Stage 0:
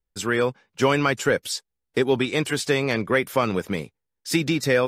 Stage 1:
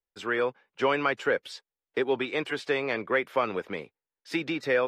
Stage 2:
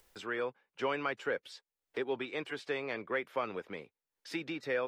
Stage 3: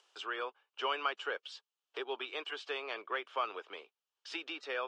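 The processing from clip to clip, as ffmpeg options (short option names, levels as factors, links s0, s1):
-filter_complex "[0:a]acrossover=split=310 3700:gain=0.2 1 0.1[s0][s1][s2];[s0][s1][s2]amix=inputs=3:normalize=0,volume=0.668"
-af "acompressor=mode=upward:threshold=0.02:ratio=2.5,volume=0.376"
-af "highpass=f=420:w=0.5412,highpass=f=420:w=1.3066,equalizer=f=520:t=q:w=4:g=-7,equalizer=f=1200:t=q:w=4:g=5,equalizer=f=2000:t=q:w=4:g=-8,equalizer=f=3000:t=q:w=4:g=9,lowpass=f=7300:w=0.5412,lowpass=f=7300:w=1.3066"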